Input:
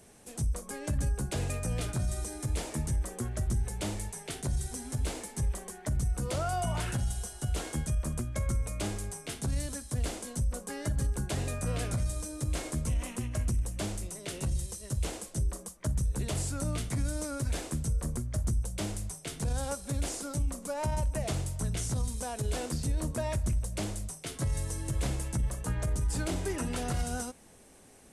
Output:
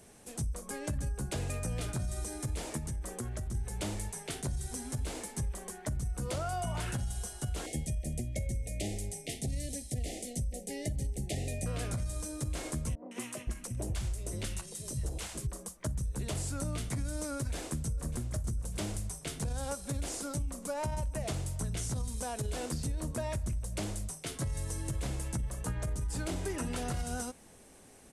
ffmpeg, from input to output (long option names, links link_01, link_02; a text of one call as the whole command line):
ffmpeg -i in.wav -filter_complex "[0:a]asettb=1/sr,asplit=3[link_01][link_02][link_03];[link_01]atrim=end=2.774[link_04];[link_02]atrim=start=2.77:end=3.55,asetpts=PTS-STARTPTS,afade=type=in:duration=0.004:curve=qsin,afade=type=out:start_time=0.776:duration=0.004:curve=qsin,acompressor=threshold=-33dB:ratio=6:attack=3.2:release=140:knee=1:detection=peak[link_05];[link_03]atrim=start=3.546[link_06];[link_04][link_05]acrossfade=duration=0.004:curve1=hsin:curve2=qsin[link_07];[link_07][link_06]acrossfade=duration=0.004:curve1=qsin:curve2=hsin,asettb=1/sr,asplit=3[link_08][link_09][link_10];[link_08]atrim=end=7.664[link_11];[link_09]atrim=start=7.66:end=11.66,asetpts=PTS-STARTPTS,afade=type=in:duration=0.004:curve=qsin,afade=type=out:start_time=3.996:duration=0.004:curve=qsin,asuperstop=centerf=1200:order=20:qfactor=1.2[link_12];[link_10]atrim=start=11.656[link_13];[link_11][link_12]acrossfade=duration=0.004:curve1=hsin:curve2=qsin[link_14];[link_14][link_13]acrossfade=duration=0.004:curve1=qsin:curve2=hsin,asettb=1/sr,asplit=3[link_15][link_16][link_17];[link_15]atrim=end=12.954[link_18];[link_16]atrim=start=12.95:end=15.47,asetpts=PTS-STARTPTS,afade=type=in:duration=0.004:curve=qsin,afade=type=out:start_time=2.516:duration=0.004:curve=qsin,acrossover=split=200|790[link_19][link_20][link_21];[link_21]adelay=160[link_22];[link_19]adelay=520[link_23];[link_23][link_20][link_22]amix=inputs=3:normalize=0,atrim=end_sample=111132[link_24];[link_17]atrim=start=15.466[link_25];[link_18][link_24]acrossfade=duration=0.004:curve1=hsin:curve2=qsin[link_26];[link_26][link_25]acrossfade=duration=0.004:curve1=qsin:curve2=hsin,asplit=2[link_27][link_28];[link_28]afade=type=in:start_time=17.37:duration=0.01,afade=type=out:start_time=18.42:duration=0.01,aecho=0:1:600|1200|1800:0.211349|0.0739721|0.0258902[link_29];[link_27][link_29]amix=inputs=2:normalize=0,acompressor=threshold=-31dB:ratio=6" out.wav